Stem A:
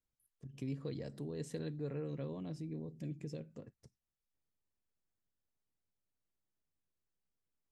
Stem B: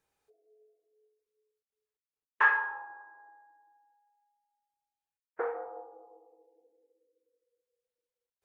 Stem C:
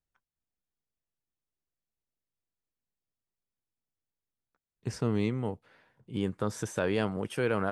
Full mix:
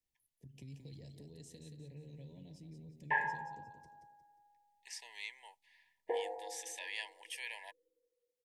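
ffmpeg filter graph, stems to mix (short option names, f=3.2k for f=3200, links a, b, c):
-filter_complex "[0:a]acrossover=split=130|3000[a][b][c];[b]acompressor=threshold=-54dB:ratio=6[d];[a][d][c]amix=inputs=3:normalize=0,volume=-3dB,asplit=2[e][f];[f]volume=-7dB[g];[1:a]acrossover=split=2600[h][i];[i]acompressor=threshold=-57dB:ratio=4:attack=1:release=60[j];[h][j]amix=inputs=2:normalize=0,adelay=700,volume=-2.5dB[k];[2:a]highpass=f=1.2k:w=0.5412,highpass=f=1.2k:w=1.3066,volume=-1.5dB[l];[g]aecho=0:1:178|356|534|712|890:1|0.34|0.116|0.0393|0.0134[m];[e][k][l][m]amix=inputs=4:normalize=0,asuperstop=centerf=1300:order=20:qfactor=1.9"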